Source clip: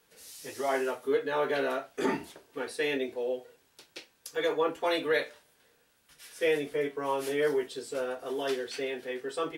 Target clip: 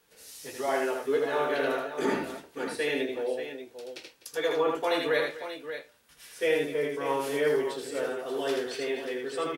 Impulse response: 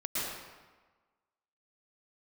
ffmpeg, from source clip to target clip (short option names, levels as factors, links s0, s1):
-af "aecho=1:1:80|251|584:0.668|0.15|0.316"